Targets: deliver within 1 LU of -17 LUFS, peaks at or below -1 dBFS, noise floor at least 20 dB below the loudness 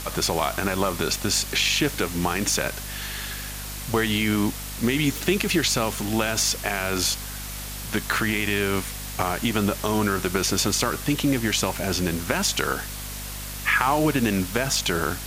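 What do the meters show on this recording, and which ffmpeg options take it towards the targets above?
hum 50 Hz; harmonics up to 250 Hz; hum level -34 dBFS; noise floor -34 dBFS; noise floor target -44 dBFS; loudness -24.0 LUFS; peak -4.0 dBFS; loudness target -17.0 LUFS
-> -af "bandreject=f=50:t=h:w=4,bandreject=f=100:t=h:w=4,bandreject=f=150:t=h:w=4,bandreject=f=200:t=h:w=4,bandreject=f=250:t=h:w=4"
-af "afftdn=nr=10:nf=-34"
-af "volume=7dB,alimiter=limit=-1dB:level=0:latency=1"

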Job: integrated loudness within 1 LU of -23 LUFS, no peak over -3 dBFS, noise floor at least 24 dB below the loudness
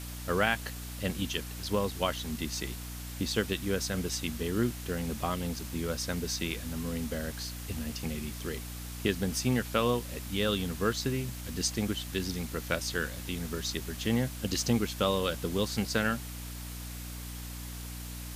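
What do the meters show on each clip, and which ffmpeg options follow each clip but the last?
hum 60 Hz; harmonics up to 300 Hz; hum level -39 dBFS; noise floor -41 dBFS; noise floor target -57 dBFS; loudness -32.5 LUFS; peak -11.5 dBFS; loudness target -23.0 LUFS
-> -af "bandreject=f=60:t=h:w=4,bandreject=f=120:t=h:w=4,bandreject=f=180:t=h:w=4,bandreject=f=240:t=h:w=4,bandreject=f=300:t=h:w=4"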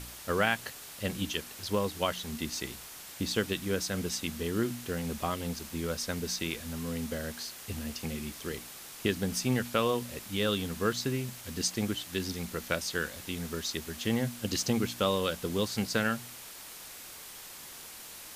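hum none; noise floor -47 dBFS; noise floor target -57 dBFS
-> -af "afftdn=nr=10:nf=-47"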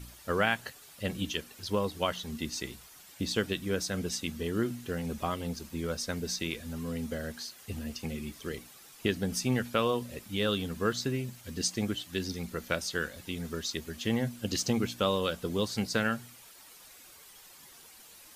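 noise floor -54 dBFS; noise floor target -57 dBFS
-> -af "afftdn=nr=6:nf=-54"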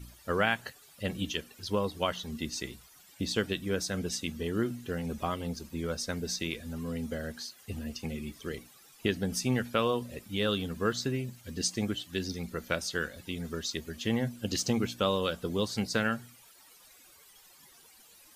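noise floor -58 dBFS; loudness -33.0 LUFS; peak -12.0 dBFS; loudness target -23.0 LUFS
-> -af "volume=10dB,alimiter=limit=-3dB:level=0:latency=1"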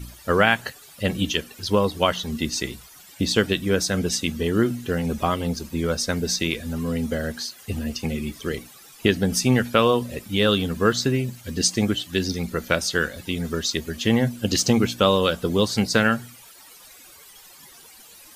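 loudness -23.0 LUFS; peak -3.0 dBFS; noise floor -48 dBFS

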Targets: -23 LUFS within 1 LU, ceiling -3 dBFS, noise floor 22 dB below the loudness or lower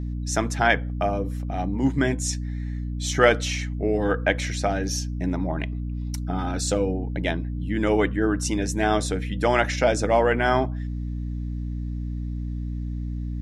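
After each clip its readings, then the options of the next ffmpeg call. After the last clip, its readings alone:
hum 60 Hz; harmonics up to 300 Hz; hum level -27 dBFS; loudness -25.0 LUFS; peak -3.0 dBFS; loudness target -23.0 LUFS
-> -af "bandreject=f=60:t=h:w=6,bandreject=f=120:t=h:w=6,bandreject=f=180:t=h:w=6,bandreject=f=240:t=h:w=6,bandreject=f=300:t=h:w=6"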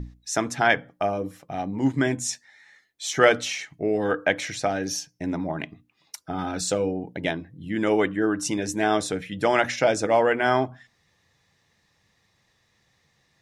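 hum none; loudness -25.0 LUFS; peak -3.5 dBFS; loudness target -23.0 LUFS
-> -af "volume=2dB,alimiter=limit=-3dB:level=0:latency=1"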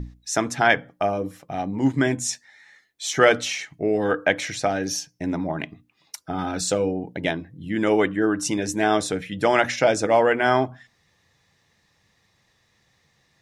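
loudness -23.0 LUFS; peak -3.0 dBFS; noise floor -66 dBFS

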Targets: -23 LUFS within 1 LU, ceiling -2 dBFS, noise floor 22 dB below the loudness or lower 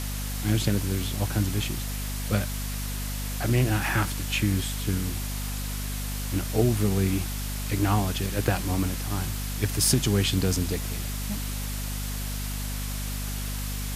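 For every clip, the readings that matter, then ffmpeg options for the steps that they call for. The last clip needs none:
hum 50 Hz; harmonics up to 250 Hz; hum level -29 dBFS; noise floor -31 dBFS; noise floor target -50 dBFS; loudness -27.5 LUFS; peak -8.0 dBFS; loudness target -23.0 LUFS
-> -af "bandreject=f=50:t=h:w=4,bandreject=f=100:t=h:w=4,bandreject=f=150:t=h:w=4,bandreject=f=200:t=h:w=4,bandreject=f=250:t=h:w=4"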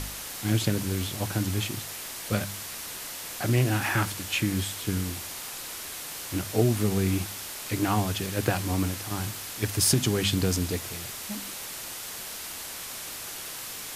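hum none; noise floor -38 dBFS; noise floor target -51 dBFS
-> -af "afftdn=nr=13:nf=-38"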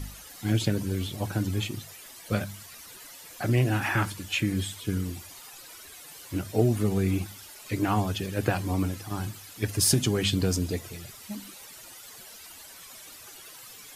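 noise floor -47 dBFS; noise floor target -51 dBFS
-> -af "afftdn=nr=6:nf=-47"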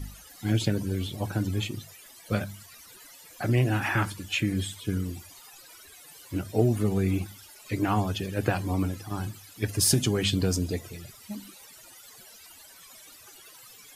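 noise floor -51 dBFS; loudness -28.0 LUFS; peak -9.0 dBFS; loudness target -23.0 LUFS
-> -af "volume=5dB"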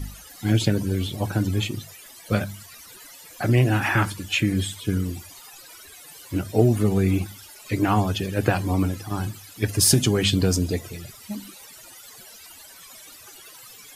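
loudness -23.0 LUFS; peak -4.0 dBFS; noise floor -46 dBFS

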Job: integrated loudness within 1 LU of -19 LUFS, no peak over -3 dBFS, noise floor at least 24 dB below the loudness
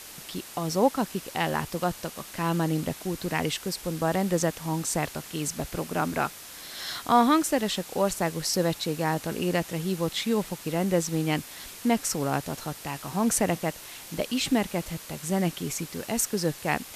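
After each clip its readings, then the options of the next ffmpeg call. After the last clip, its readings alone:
noise floor -44 dBFS; noise floor target -52 dBFS; loudness -28.0 LUFS; peak -9.0 dBFS; loudness target -19.0 LUFS
-> -af "afftdn=nr=8:nf=-44"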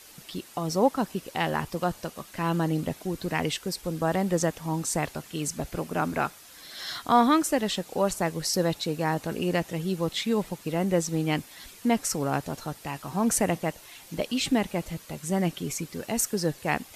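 noise floor -50 dBFS; noise floor target -52 dBFS
-> -af "afftdn=nr=6:nf=-50"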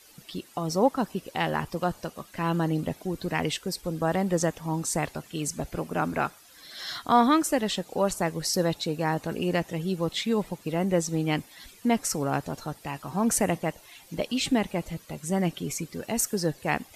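noise floor -54 dBFS; loudness -28.0 LUFS; peak -9.5 dBFS; loudness target -19.0 LUFS
-> -af "volume=9dB,alimiter=limit=-3dB:level=0:latency=1"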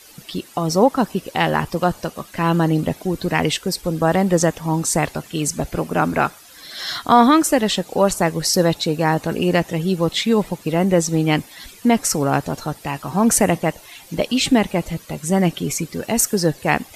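loudness -19.5 LUFS; peak -3.0 dBFS; noise floor -45 dBFS

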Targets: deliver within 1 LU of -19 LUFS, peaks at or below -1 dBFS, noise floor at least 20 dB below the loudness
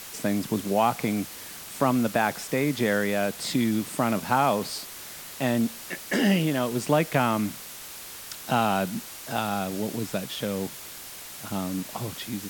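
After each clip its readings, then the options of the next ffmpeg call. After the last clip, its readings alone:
noise floor -41 dBFS; noise floor target -47 dBFS; loudness -26.5 LUFS; peak -8.0 dBFS; loudness target -19.0 LUFS
-> -af "afftdn=nr=6:nf=-41"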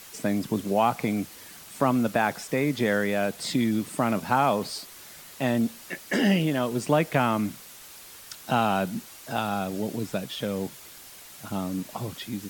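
noise floor -46 dBFS; noise floor target -47 dBFS
-> -af "afftdn=nr=6:nf=-46"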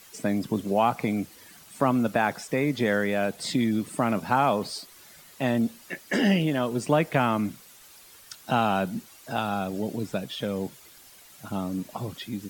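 noise floor -52 dBFS; loudness -27.0 LUFS; peak -8.0 dBFS; loudness target -19.0 LUFS
-> -af "volume=8dB,alimiter=limit=-1dB:level=0:latency=1"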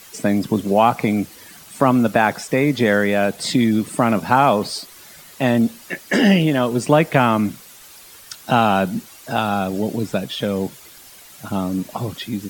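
loudness -19.0 LUFS; peak -1.0 dBFS; noise floor -44 dBFS

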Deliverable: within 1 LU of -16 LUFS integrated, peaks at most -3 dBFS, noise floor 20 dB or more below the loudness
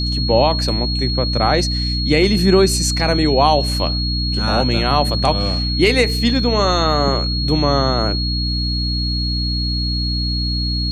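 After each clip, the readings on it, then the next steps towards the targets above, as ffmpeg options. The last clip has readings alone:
hum 60 Hz; harmonics up to 300 Hz; hum level -19 dBFS; steady tone 4300 Hz; tone level -22 dBFS; loudness -17.0 LUFS; peak -1.5 dBFS; loudness target -16.0 LUFS
-> -af "bandreject=f=60:t=h:w=6,bandreject=f=120:t=h:w=6,bandreject=f=180:t=h:w=6,bandreject=f=240:t=h:w=6,bandreject=f=300:t=h:w=6"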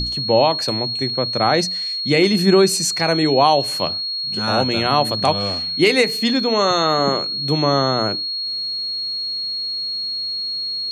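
hum none; steady tone 4300 Hz; tone level -22 dBFS
-> -af "bandreject=f=4.3k:w=30"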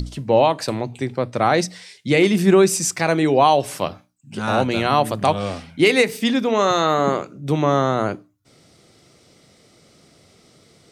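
steady tone none; loudness -19.0 LUFS; peak -3.5 dBFS; loudness target -16.0 LUFS
-> -af "volume=3dB,alimiter=limit=-3dB:level=0:latency=1"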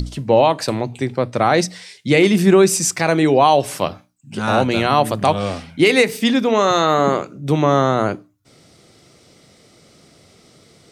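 loudness -16.5 LUFS; peak -3.0 dBFS; noise floor -52 dBFS

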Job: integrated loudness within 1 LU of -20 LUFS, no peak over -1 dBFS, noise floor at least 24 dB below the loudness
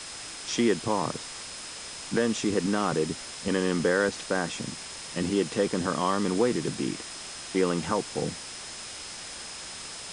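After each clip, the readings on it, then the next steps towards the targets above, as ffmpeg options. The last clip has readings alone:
steady tone 5100 Hz; tone level -45 dBFS; noise floor -40 dBFS; noise floor target -53 dBFS; loudness -29.0 LUFS; peak -11.5 dBFS; loudness target -20.0 LUFS
-> -af "bandreject=f=5.1k:w=30"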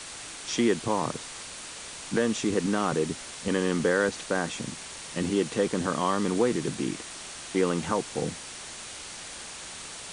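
steady tone none; noise floor -41 dBFS; noise floor target -54 dBFS
-> -af "afftdn=nr=13:nf=-41"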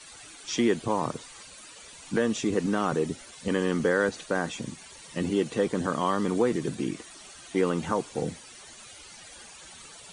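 noise floor -48 dBFS; noise floor target -53 dBFS
-> -af "afftdn=nr=6:nf=-48"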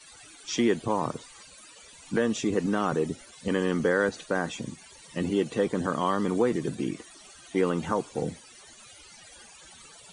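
noise floor -51 dBFS; noise floor target -53 dBFS
-> -af "afftdn=nr=6:nf=-51"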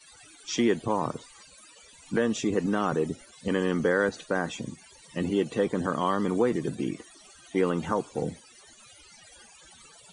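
noise floor -54 dBFS; loudness -28.5 LUFS; peak -12.0 dBFS; loudness target -20.0 LUFS
-> -af "volume=8.5dB"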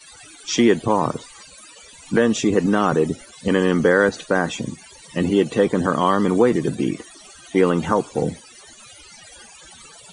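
loudness -20.0 LUFS; peak -3.5 dBFS; noise floor -45 dBFS

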